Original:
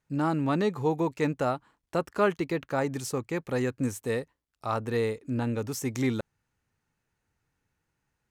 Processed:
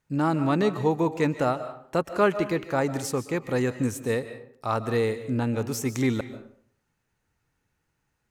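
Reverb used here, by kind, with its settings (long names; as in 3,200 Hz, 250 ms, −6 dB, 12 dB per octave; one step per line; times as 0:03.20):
comb and all-pass reverb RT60 0.59 s, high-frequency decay 0.65×, pre-delay 105 ms, DRR 11.5 dB
level +3 dB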